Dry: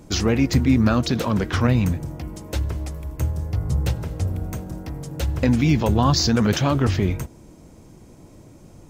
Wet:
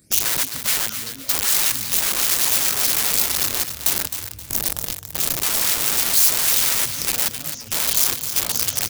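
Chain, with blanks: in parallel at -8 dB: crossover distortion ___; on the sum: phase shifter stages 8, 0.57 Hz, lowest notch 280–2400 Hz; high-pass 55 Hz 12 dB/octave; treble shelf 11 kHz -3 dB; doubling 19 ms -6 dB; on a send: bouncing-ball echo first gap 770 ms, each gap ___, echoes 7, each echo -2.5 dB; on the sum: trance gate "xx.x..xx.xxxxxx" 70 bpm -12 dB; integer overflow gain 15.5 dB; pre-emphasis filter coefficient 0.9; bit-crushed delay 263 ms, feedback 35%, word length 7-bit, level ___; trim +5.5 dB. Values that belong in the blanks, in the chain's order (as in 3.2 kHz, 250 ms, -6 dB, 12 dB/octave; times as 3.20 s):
-42 dBFS, 0.75×, -8.5 dB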